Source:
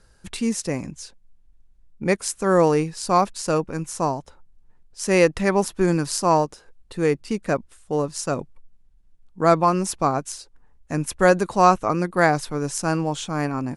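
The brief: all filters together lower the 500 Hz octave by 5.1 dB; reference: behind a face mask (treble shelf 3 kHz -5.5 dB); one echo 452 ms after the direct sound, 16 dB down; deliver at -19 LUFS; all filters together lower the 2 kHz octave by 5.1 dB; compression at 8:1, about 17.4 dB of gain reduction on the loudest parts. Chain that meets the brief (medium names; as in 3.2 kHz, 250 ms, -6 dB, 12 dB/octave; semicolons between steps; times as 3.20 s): peaking EQ 500 Hz -6 dB; peaking EQ 2 kHz -4.5 dB; compression 8:1, threshold -32 dBFS; treble shelf 3 kHz -5.5 dB; delay 452 ms -16 dB; trim +19 dB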